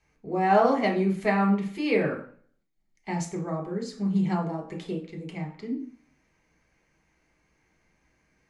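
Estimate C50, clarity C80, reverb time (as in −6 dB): 9.0 dB, 14.0 dB, 0.45 s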